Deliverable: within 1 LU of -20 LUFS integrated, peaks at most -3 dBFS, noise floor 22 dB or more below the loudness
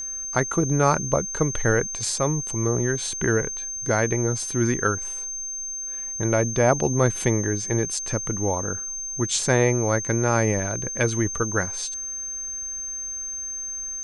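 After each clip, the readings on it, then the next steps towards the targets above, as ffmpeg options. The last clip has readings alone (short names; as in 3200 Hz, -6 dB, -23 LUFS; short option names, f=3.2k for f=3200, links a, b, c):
steady tone 6300 Hz; tone level -29 dBFS; loudness -24.0 LUFS; peak -5.0 dBFS; loudness target -20.0 LUFS
-> -af "bandreject=f=6.3k:w=30"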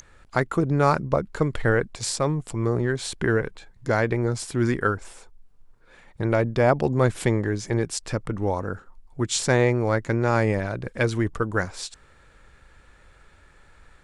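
steady tone none; loudness -24.5 LUFS; peak -5.5 dBFS; loudness target -20.0 LUFS
-> -af "volume=4.5dB,alimiter=limit=-3dB:level=0:latency=1"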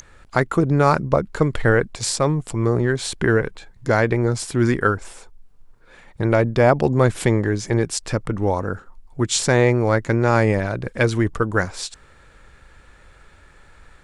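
loudness -20.0 LUFS; peak -3.0 dBFS; noise floor -50 dBFS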